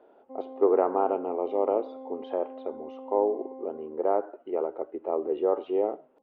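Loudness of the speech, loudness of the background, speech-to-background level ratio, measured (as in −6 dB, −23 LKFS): −28.5 LKFS, −43.5 LKFS, 15.0 dB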